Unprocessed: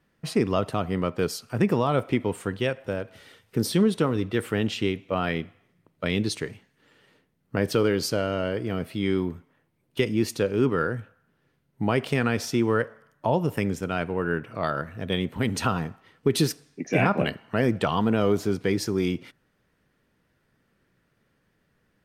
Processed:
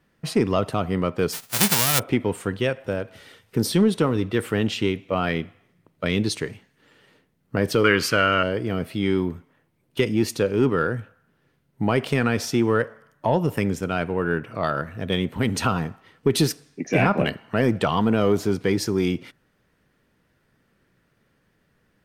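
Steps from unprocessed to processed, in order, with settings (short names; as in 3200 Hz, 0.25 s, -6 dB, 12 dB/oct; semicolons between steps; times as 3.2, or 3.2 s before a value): 1.32–1.98 spectral whitening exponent 0.1; in parallel at -4 dB: soft clip -15.5 dBFS, distortion -16 dB; 7.84–8.43 on the sum: band shelf 1800 Hz +12.5 dB; gain -1 dB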